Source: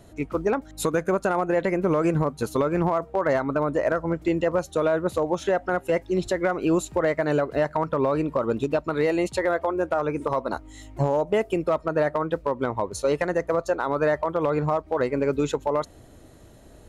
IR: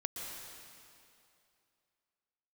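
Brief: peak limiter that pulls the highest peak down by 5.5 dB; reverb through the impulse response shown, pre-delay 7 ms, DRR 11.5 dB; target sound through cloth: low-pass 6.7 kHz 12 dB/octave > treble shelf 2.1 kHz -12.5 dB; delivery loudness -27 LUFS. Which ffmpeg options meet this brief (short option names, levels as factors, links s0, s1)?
-filter_complex "[0:a]alimiter=limit=0.1:level=0:latency=1,asplit=2[s0][s1];[1:a]atrim=start_sample=2205,adelay=7[s2];[s1][s2]afir=irnorm=-1:irlink=0,volume=0.237[s3];[s0][s3]amix=inputs=2:normalize=0,lowpass=6700,highshelf=f=2100:g=-12.5,volume=1.41"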